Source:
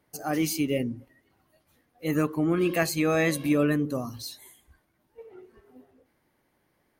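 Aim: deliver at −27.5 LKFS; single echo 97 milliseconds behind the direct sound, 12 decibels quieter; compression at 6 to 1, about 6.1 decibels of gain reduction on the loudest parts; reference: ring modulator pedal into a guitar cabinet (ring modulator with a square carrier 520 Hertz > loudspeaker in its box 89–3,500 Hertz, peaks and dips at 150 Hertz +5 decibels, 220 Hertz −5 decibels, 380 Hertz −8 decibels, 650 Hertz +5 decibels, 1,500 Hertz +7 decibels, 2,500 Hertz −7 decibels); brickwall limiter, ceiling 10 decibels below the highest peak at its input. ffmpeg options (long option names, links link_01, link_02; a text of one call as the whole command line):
ffmpeg -i in.wav -af "acompressor=threshold=-26dB:ratio=6,alimiter=level_in=4.5dB:limit=-24dB:level=0:latency=1,volume=-4.5dB,aecho=1:1:97:0.251,aeval=exprs='val(0)*sgn(sin(2*PI*520*n/s))':channel_layout=same,highpass=89,equalizer=frequency=150:width_type=q:width=4:gain=5,equalizer=frequency=220:width_type=q:width=4:gain=-5,equalizer=frequency=380:width_type=q:width=4:gain=-8,equalizer=frequency=650:width_type=q:width=4:gain=5,equalizer=frequency=1500:width_type=q:width=4:gain=7,equalizer=frequency=2500:width_type=q:width=4:gain=-7,lowpass=frequency=3500:width=0.5412,lowpass=frequency=3500:width=1.3066,volume=10dB" out.wav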